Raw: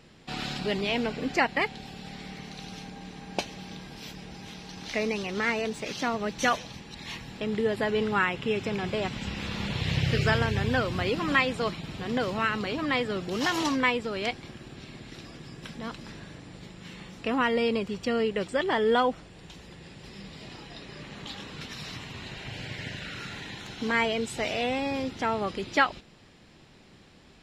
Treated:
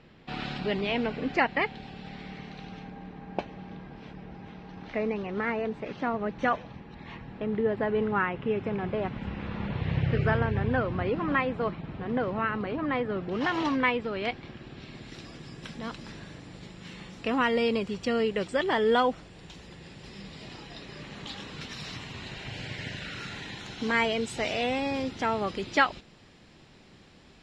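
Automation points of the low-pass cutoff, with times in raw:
2.39 s 3.1 kHz
3.14 s 1.6 kHz
13.07 s 1.6 kHz
13.64 s 2.8 kHz
14.18 s 2.8 kHz
14.83 s 4.6 kHz
15.13 s 8.9 kHz

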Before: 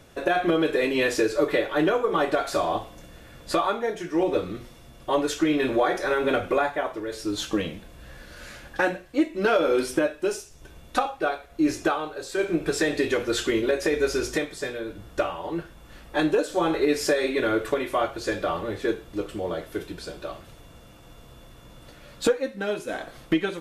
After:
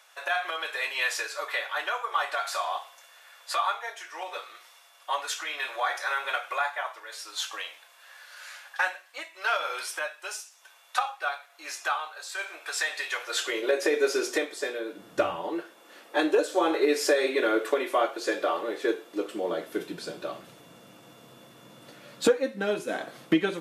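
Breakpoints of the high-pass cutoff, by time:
high-pass 24 dB/octave
13.16 s 830 Hz
13.82 s 330 Hz
14.88 s 330 Hz
15.31 s 81 Hz
15.55 s 320 Hz
19.01 s 320 Hz
20.04 s 150 Hz

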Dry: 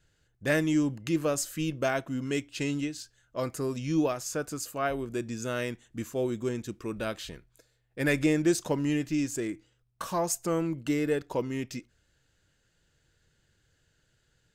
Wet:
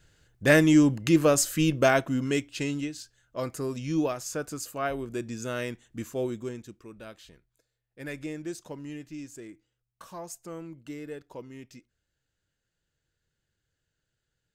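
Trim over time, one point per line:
1.94 s +7 dB
2.75 s -0.5 dB
6.24 s -0.5 dB
6.90 s -11.5 dB

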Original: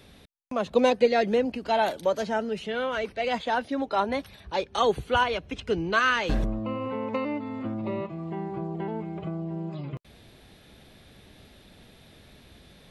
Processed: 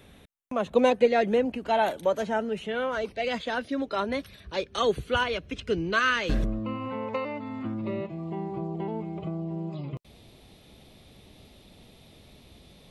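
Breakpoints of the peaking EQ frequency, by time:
peaking EQ -10.5 dB 0.47 oct
2.80 s 4.8 kHz
3.28 s 840 Hz
6.57 s 840 Hz
7.18 s 230 Hz
8.26 s 1.6 kHz

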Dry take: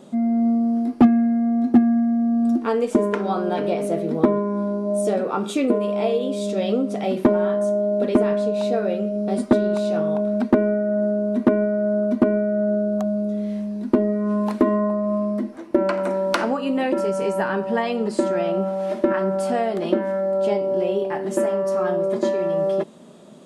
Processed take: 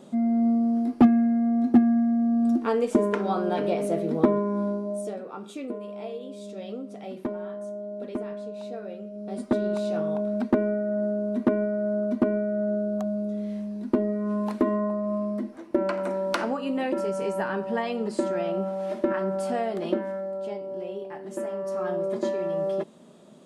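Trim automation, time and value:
4.69 s -3 dB
5.20 s -14.5 dB
9.11 s -14.5 dB
9.66 s -5.5 dB
19.92 s -5.5 dB
20.46 s -12.5 dB
21.23 s -12.5 dB
21.96 s -6 dB

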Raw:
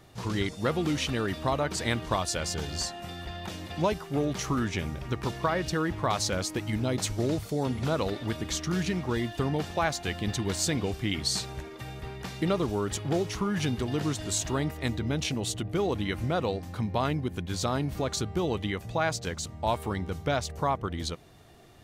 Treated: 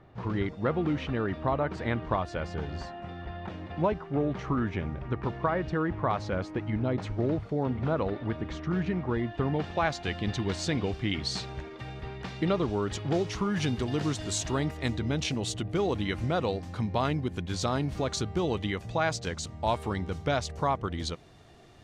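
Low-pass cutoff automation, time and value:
9.23 s 1.8 kHz
9.90 s 4.2 kHz
12.66 s 4.2 kHz
13.59 s 7.4 kHz

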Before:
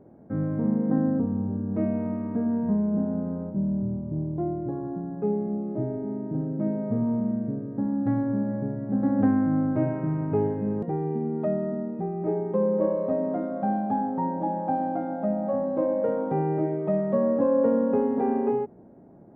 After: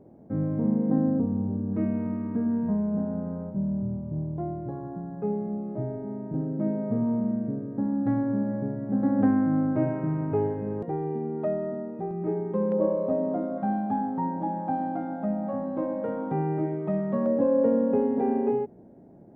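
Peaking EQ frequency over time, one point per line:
peaking EQ -7 dB
1.5 kHz
from 1.73 s 670 Hz
from 2.68 s 310 Hz
from 6.34 s 78 Hz
from 10.32 s 200 Hz
from 12.11 s 640 Hz
from 12.72 s 1.9 kHz
from 13.58 s 530 Hz
from 17.26 s 1.2 kHz

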